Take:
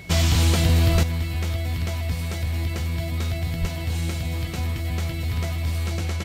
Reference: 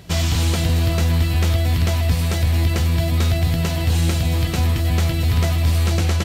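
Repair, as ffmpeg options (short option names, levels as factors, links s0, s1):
-filter_complex "[0:a]bandreject=f=2200:w=30,asplit=3[s0][s1][s2];[s0]afade=t=out:st=0.92:d=0.02[s3];[s1]highpass=f=140:w=0.5412,highpass=f=140:w=1.3066,afade=t=in:st=0.92:d=0.02,afade=t=out:st=1.04:d=0.02[s4];[s2]afade=t=in:st=1.04:d=0.02[s5];[s3][s4][s5]amix=inputs=3:normalize=0,asplit=3[s6][s7][s8];[s6]afade=t=out:st=3.6:d=0.02[s9];[s7]highpass=f=140:w=0.5412,highpass=f=140:w=1.3066,afade=t=in:st=3.6:d=0.02,afade=t=out:st=3.72:d=0.02[s10];[s8]afade=t=in:st=3.72:d=0.02[s11];[s9][s10][s11]amix=inputs=3:normalize=0,asetnsamples=n=441:p=0,asendcmd='1.03 volume volume 8dB',volume=1"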